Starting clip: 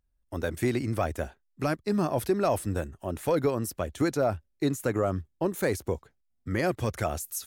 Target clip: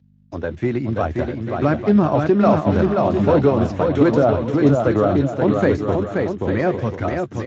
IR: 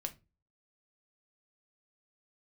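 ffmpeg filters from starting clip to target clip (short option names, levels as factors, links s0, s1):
-filter_complex "[0:a]highpass=f=52:p=1,aemphasis=mode=reproduction:type=50fm,acontrast=37,adynamicequalizer=threshold=0.0178:dfrequency=450:dqfactor=2.2:tfrequency=450:tqfactor=2.2:attack=5:release=100:ratio=0.375:range=2.5:mode=cutabove:tftype=bell,lowpass=f=2200:p=1,dynaudnorm=f=220:g=13:m=2.66,alimiter=limit=0.422:level=0:latency=1:release=136,aeval=exprs='val(0)+0.00398*(sin(2*PI*50*n/s)+sin(2*PI*2*50*n/s)/2+sin(2*PI*3*50*n/s)/3+sin(2*PI*4*50*n/s)/4+sin(2*PI*5*50*n/s)/5)':c=same,asplit=2[s0][s1];[s1]adelay=14,volume=0.237[s2];[s0][s2]amix=inputs=2:normalize=0,aecho=1:1:530|848|1039|1153|1222:0.631|0.398|0.251|0.158|0.1" -ar 16000 -c:a libspeex -b:a 17k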